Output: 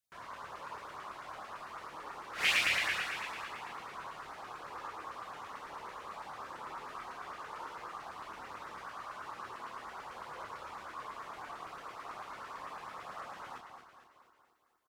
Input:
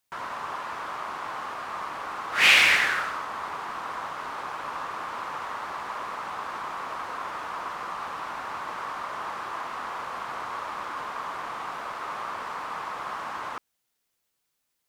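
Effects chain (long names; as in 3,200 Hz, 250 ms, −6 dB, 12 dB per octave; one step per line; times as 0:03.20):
repeating echo 231 ms, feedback 54%, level −7.5 dB
multi-voice chorus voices 4, 0.18 Hz, delay 27 ms, depth 1.5 ms
auto-filter notch saw up 9 Hz 650–3,700 Hz
level −7 dB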